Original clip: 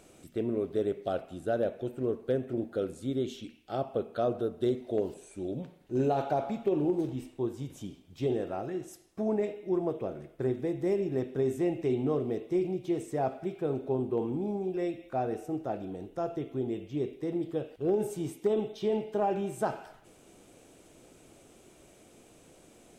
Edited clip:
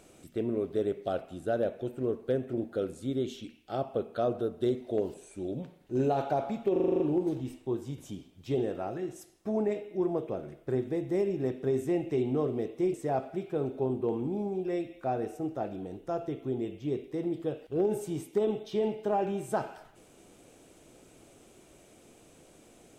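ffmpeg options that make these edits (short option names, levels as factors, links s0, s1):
-filter_complex "[0:a]asplit=9[s0][s1][s2][s3][s4][s5][s6][s7][s8];[s0]atrim=end=6.762[s9];[s1]atrim=start=6.718:end=6.762[s10];[s2]atrim=start=6.718:end=6.762[s11];[s3]atrim=start=6.718:end=6.762[s12];[s4]atrim=start=6.718:end=6.762[s13];[s5]atrim=start=6.718:end=6.762[s14];[s6]atrim=start=6.718:end=6.762[s15];[s7]atrim=start=6.718:end=12.662[s16];[s8]atrim=start=13.028[s17];[s9][s10]acrossfade=d=0.004:c1=hsin:c2=hsin[s18];[s18][s11]acrossfade=d=0.004:c1=hsin:c2=hsin[s19];[s19][s12]acrossfade=d=0.004:c1=hsin:c2=hsin[s20];[s20][s13]acrossfade=d=0.004:c1=hsin:c2=hsin[s21];[s21][s14]acrossfade=d=0.004:c1=hsin:c2=hsin[s22];[s22][s15]acrossfade=d=0.004:c1=hsin:c2=hsin[s23];[s23][s16]acrossfade=d=0.004:c1=hsin:c2=hsin[s24];[s24][s17]acrossfade=d=0.004:c1=hsin:c2=hsin"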